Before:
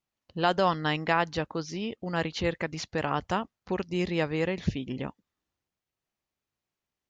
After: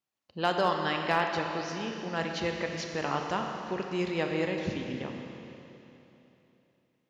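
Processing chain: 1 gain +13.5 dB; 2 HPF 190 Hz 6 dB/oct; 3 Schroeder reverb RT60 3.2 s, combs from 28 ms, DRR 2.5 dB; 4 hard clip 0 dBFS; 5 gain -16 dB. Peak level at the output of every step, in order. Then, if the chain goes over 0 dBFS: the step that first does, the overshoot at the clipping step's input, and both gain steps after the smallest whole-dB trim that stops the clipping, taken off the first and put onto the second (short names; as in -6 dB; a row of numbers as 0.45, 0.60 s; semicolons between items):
+2.5, +2.0, +3.0, 0.0, -16.0 dBFS; step 1, 3.0 dB; step 1 +10.5 dB, step 5 -13 dB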